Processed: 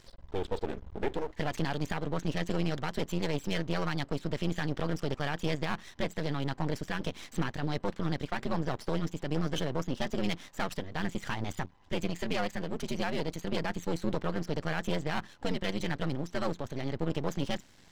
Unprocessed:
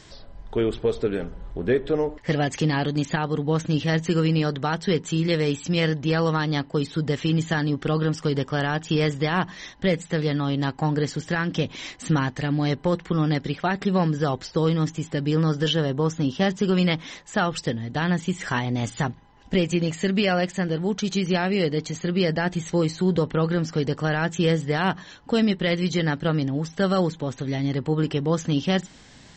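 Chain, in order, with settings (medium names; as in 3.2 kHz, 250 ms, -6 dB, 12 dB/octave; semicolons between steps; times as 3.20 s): half-wave rectifier; granular stretch 0.61×, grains 22 ms; trim -5 dB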